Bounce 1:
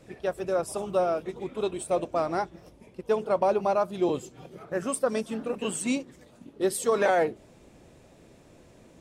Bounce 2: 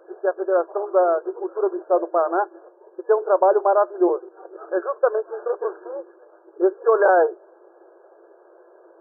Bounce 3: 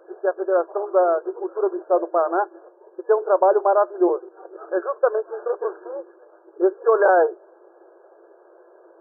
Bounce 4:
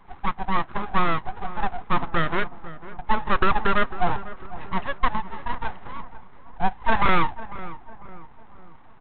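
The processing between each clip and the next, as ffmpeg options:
ffmpeg -i in.wav -af "afftfilt=real='re*between(b*sr/4096,330,1700)':imag='im*between(b*sr/4096,330,1700)':win_size=4096:overlap=0.75,volume=7.5dB" out.wav
ffmpeg -i in.wav -af anull out.wav
ffmpeg -i in.wav -filter_complex "[0:a]aresample=8000,aeval=exprs='abs(val(0))':channel_layout=same,aresample=44100,asplit=2[link_01][link_02];[link_02]adelay=499,lowpass=frequency=1400:poles=1,volume=-14.5dB,asplit=2[link_03][link_04];[link_04]adelay=499,lowpass=frequency=1400:poles=1,volume=0.49,asplit=2[link_05][link_06];[link_06]adelay=499,lowpass=frequency=1400:poles=1,volume=0.49,asplit=2[link_07][link_08];[link_08]adelay=499,lowpass=frequency=1400:poles=1,volume=0.49,asplit=2[link_09][link_10];[link_10]adelay=499,lowpass=frequency=1400:poles=1,volume=0.49[link_11];[link_01][link_03][link_05][link_07][link_09][link_11]amix=inputs=6:normalize=0" out.wav

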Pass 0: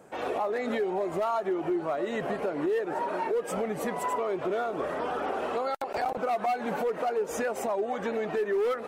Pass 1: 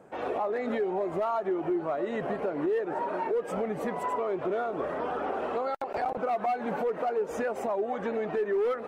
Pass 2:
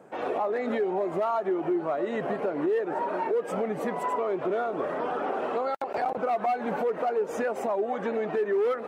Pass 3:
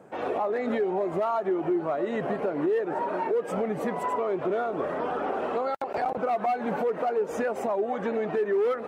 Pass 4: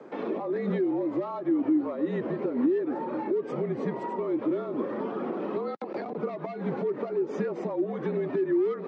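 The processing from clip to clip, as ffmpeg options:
ffmpeg -i in.wav -af "highshelf=frequency=3500:gain=-12" out.wav
ffmpeg -i in.wav -af "highpass=130,volume=2dB" out.wav
ffmpeg -i in.wav -af "lowshelf=frequency=99:gain=11" out.wav
ffmpeg -i in.wav -filter_complex "[0:a]afreqshift=-45,acrossover=split=290[link_01][link_02];[link_02]acompressor=threshold=-44dB:ratio=2.5[link_03];[link_01][link_03]amix=inputs=2:normalize=0,highpass=frequency=210:width=0.5412,highpass=frequency=210:width=1.3066,equalizer=frequency=700:width_type=q:width=4:gain=-8,equalizer=frequency=1500:width_type=q:width=4:gain=-5,equalizer=frequency=2800:width_type=q:width=4:gain=-5,lowpass=frequency=5100:width=0.5412,lowpass=frequency=5100:width=1.3066,volume=7dB" out.wav

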